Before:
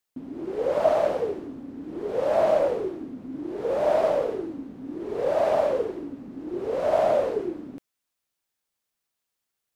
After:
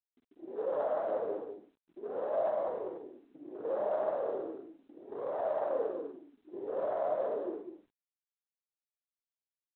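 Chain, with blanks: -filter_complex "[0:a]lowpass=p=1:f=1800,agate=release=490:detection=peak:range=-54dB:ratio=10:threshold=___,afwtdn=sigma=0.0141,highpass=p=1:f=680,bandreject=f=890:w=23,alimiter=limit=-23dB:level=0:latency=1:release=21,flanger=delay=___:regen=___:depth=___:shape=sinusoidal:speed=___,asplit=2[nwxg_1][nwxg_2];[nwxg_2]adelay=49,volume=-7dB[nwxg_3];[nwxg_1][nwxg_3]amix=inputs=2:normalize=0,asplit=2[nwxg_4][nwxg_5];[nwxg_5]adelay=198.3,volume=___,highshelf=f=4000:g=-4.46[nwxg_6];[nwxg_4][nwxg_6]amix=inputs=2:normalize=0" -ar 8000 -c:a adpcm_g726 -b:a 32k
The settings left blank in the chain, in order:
-31dB, 0.9, 52, 8.9, 0.38, -7dB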